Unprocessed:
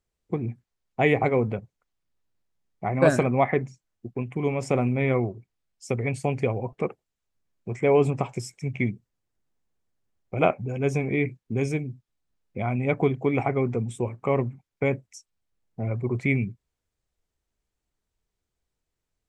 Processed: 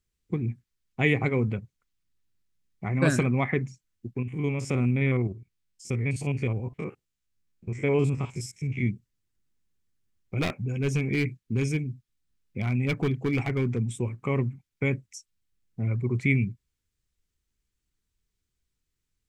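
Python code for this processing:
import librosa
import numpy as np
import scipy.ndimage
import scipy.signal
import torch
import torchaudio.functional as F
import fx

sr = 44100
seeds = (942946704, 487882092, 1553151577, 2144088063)

y = fx.spec_steps(x, sr, hold_ms=50, at=(4.2, 8.86), fade=0.02)
y = fx.clip_hard(y, sr, threshold_db=-18.0, at=(10.41, 13.91))
y = fx.peak_eq(y, sr, hz=680.0, db=-14.5, octaves=1.4)
y = y * 10.0 ** (2.5 / 20.0)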